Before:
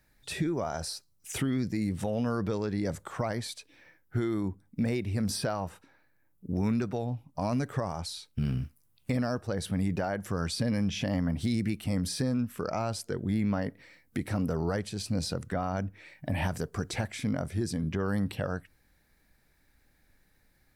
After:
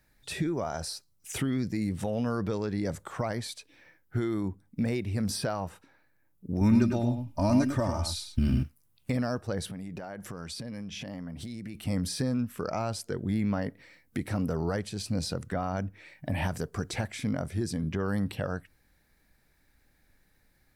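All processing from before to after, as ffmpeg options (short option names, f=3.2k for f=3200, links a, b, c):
-filter_complex "[0:a]asettb=1/sr,asplit=3[a][b][c];[a]atrim=end=6.614[d];[b]atrim=start=6.61:end=8.63,asetpts=PTS-STARTPTS,afade=t=in:d=0.004:c=qsin,afade=t=out:st=2.016:d=0.004:c=qsin,bass=f=250:g=8,treble=f=4k:g=3,aecho=1:1:3.3:0.76,atrim=end_sample=89082,aecho=1:1:102:0.447,atrim=end_sample=89082[e];[c]atrim=start=8.626[f];[d][e]acrossfade=d=0.004:c1=hsin:c2=qsin[g];[g][f]acrossfade=d=0.004:c1=qsin:c2=hsin,asettb=1/sr,asplit=3[h][i][j];[h]atrim=end=9.664[k];[i]atrim=start=9.66:end=11.75,asetpts=PTS-STARTPTS,afade=t=in:d=0.004:c=qsin,afade=t=out:st=2.086:d=0.004:c=qsin,equalizer=f=91:w=5:g=-8,acompressor=threshold=-35dB:ratio=12:attack=3.2:release=140:knee=1:detection=peak[l];[j]atrim=start=11.746[m];[k][l]acrossfade=d=0.004:c1=hsin:c2=qsin[n];[n][m]acrossfade=d=0.004:c1=qsin:c2=hsin"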